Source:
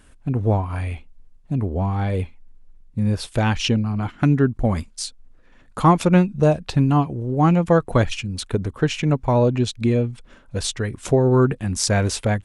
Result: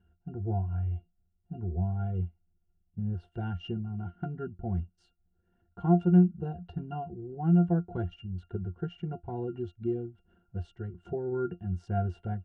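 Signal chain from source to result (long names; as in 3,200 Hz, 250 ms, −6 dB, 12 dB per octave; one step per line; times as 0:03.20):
high-shelf EQ 3,100 Hz −7.5 dB
resonances in every octave F, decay 0.12 s
level −3.5 dB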